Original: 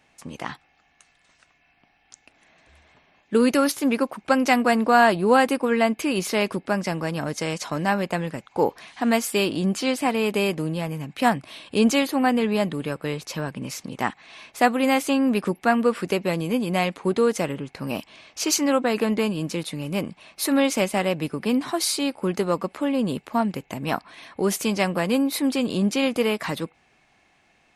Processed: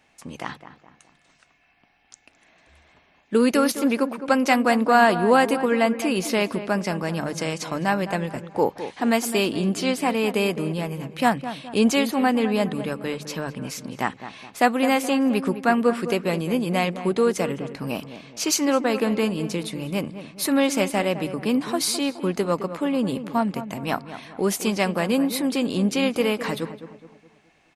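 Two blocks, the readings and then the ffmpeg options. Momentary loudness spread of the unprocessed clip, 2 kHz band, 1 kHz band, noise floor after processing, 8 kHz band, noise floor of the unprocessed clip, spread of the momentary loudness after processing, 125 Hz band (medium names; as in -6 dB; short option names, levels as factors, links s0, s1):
11 LU, 0.0 dB, +0.5 dB, -61 dBFS, 0.0 dB, -63 dBFS, 11 LU, 0.0 dB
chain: -filter_complex "[0:a]bandreject=f=50:t=h:w=6,bandreject=f=100:t=h:w=6,bandreject=f=150:t=h:w=6,asplit=2[s0][s1];[s1]adelay=210,lowpass=f=1600:p=1,volume=0.282,asplit=2[s2][s3];[s3]adelay=210,lowpass=f=1600:p=1,volume=0.45,asplit=2[s4][s5];[s5]adelay=210,lowpass=f=1600:p=1,volume=0.45,asplit=2[s6][s7];[s7]adelay=210,lowpass=f=1600:p=1,volume=0.45,asplit=2[s8][s9];[s9]adelay=210,lowpass=f=1600:p=1,volume=0.45[s10];[s0][s2][s4][s6][s8][s10]amix=inputs=6:normalize=0"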